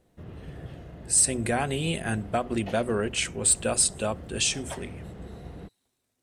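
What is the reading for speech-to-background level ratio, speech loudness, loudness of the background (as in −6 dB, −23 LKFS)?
17.5 dB, −25.5 LKFS, −43.0 LKFS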